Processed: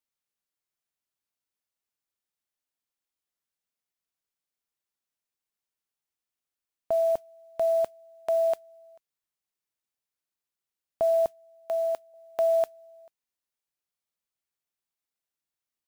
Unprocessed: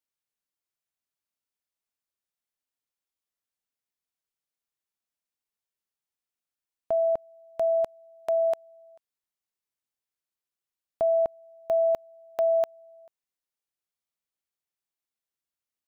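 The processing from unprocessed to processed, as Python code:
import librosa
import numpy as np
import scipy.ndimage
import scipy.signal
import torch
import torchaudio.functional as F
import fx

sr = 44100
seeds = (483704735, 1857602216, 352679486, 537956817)

y = fx.highpass(x, sr, hz=850.0, slope=6, at=(11.26, 12.14))
y = fx.mod_noise(y, sr, seeds[0], snr_db=29)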